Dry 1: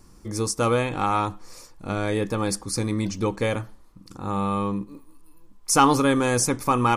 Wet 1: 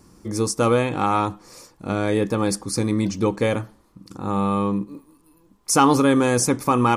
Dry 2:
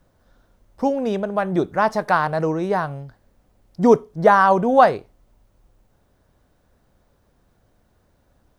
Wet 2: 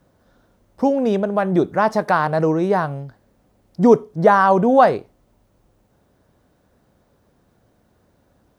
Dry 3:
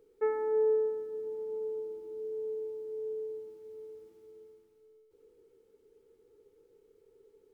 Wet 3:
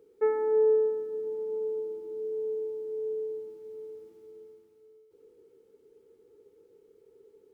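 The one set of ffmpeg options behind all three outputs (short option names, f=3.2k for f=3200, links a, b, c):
-filter_complex "[0:a]highpass=f=240:p=1,lowshelf=f=410:g=9,asplit=2[a][b];[b]alimiter=limit=-10.5dB:level=0:latency=1:release=77,volume=-3dB[c];[a][c]amix=inputs=2:normalize=0,volume=-3.5dB"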